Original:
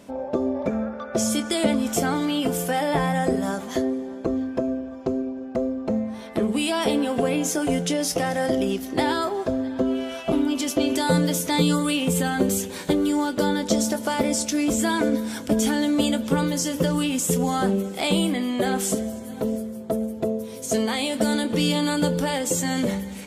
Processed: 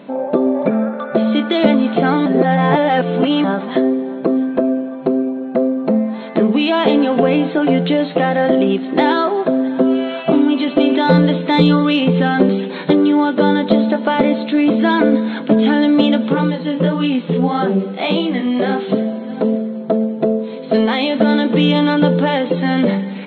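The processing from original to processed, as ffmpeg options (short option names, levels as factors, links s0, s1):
-filter_complex "[0:a]asplit=3[s0][s1][s2];[s0]afade=t=out:st=16.31:d=0.02[s3];[s1]flanger=delay=17.5:depth=7.2:speed=1.7,afade=t=in:st=16.31:d=0.02,afade=t=out:st=18.88:d=0.02[s4];[s2]afade=t=in:st=18.88:d=0.02[s5];[s3][s4][s5]amix=inputs=3:normalize=0,asplit=3[s6][s7][s8];[s6]atrim=end=2.262[s9];[s7]atrim=start=2.258:end=3.442,asetpts=PTS-STARTPTS,areverse[s10];[s8]atrim=start=3.438[s11];[s9][s10]acrossfade=d=0.004:c1=hsin:c2=hsin[s12];[s12][s11]acrossfade=d=0.004:c1=hsin:c2=hsin,afftfilt=real='re*between(b*sr/4096,140,4300)':imag='im*between(b*sr/4096,140,4300)':win_size=4096:overlap=0.75,aemphasis=mode=reproduction:type=50fm,acontrast=75,volume=1.33"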